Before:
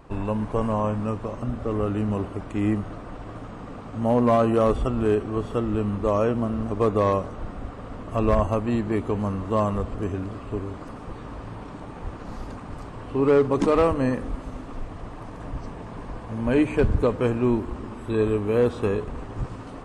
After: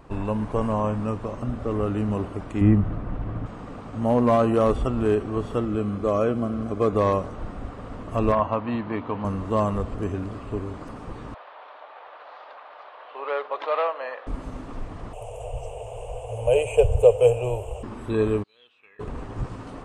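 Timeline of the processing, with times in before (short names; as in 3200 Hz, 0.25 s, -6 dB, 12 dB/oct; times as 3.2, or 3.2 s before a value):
2.61–3.46 tone controls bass +10 dB, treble -13 dB
5.65–6.93 notch comb 920 Hz
8.32–9.25 speaker cabinet 140–4100 Hz, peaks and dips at 190 Hz -5 dB, 380 Hz -10 dB, 1000 Hz +6 dB
11.34–14.27 elliptic band-pass 590–3800 Hz, stop band 50 dB
15.13–17.83 EQ curve 120 Hz 0 dB, 180 Hz -27 dB, 310 Hz -27 dB, 470 Hz +10 dB, 740 Hz +7 dB, 1100 Hz -11 dB, 1800 Hz -19 dB, 2800 Hz +10 dB, 4200 Hz -18 dB, 7300 Hz +12 dB
18.42–18.99 band-pass 4600 Hz -> 1800 Hz, Q 19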